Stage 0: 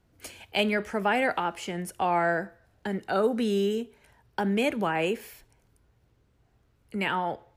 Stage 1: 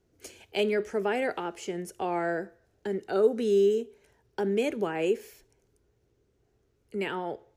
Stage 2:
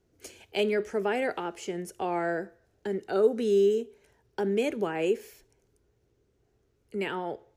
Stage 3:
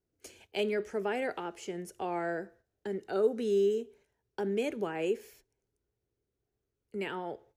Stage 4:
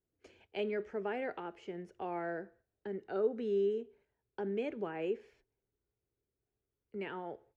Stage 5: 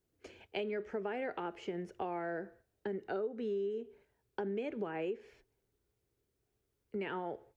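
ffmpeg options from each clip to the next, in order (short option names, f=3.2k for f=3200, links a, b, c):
-af "equalizer=f=400:t=o:w=0.67:g=12,equalizer=f=1k:t=o:w=0.67:g=-3,equalizer=f=6.3k:t=o:w=0.67:g=7,volume=-6.5dB"
-af anull
-af "agate=range=-10dB:threshold=-54dB:ratio=16:detection=peak,volume=-4.5dB"
-af "lowpass=2.7k,volume=-4.5dB"
-af "acompressor=threshold=-41dB:ratio=6,volume=6.5dB"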